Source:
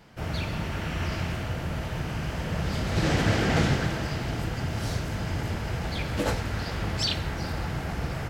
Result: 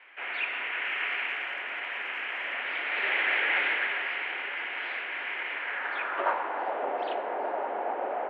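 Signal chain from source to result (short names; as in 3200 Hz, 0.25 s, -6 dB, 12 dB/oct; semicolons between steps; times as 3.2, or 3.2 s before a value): mistuned SSB +74 Hz 260–3000 Hz; 0.82–2.54 crackle 110/s -45 dBFS; in parallel at +1.5 dB: limiter -23 dBFS, peak gain reduction 10.5 dB; on the sum: band-pass sweep 2200 Hz -> 680 Hz, 5.54–6.81; gain +4 dB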